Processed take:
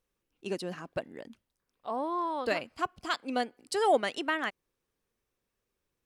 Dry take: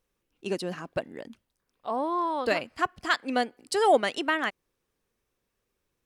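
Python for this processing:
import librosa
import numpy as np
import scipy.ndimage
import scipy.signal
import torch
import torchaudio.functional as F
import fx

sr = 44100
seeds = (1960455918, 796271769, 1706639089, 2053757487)

y = fx.peak_eq(x, sr, hz=1800.0, db=-10.5, octaves=0.31, at=(2.73, 3.4))
y = y * librosa.db_to_amplitude(-4.0)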